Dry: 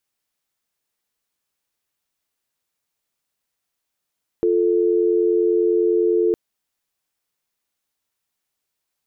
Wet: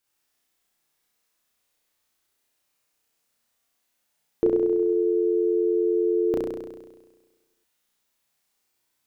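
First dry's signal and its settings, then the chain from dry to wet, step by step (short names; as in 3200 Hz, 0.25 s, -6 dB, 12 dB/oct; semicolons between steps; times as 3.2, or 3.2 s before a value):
call progress tone dial tone, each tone -17.5 dBFS 1.91 s
notches 60/120/180 Hz; flutter echo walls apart 5.7 m, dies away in 1.3 s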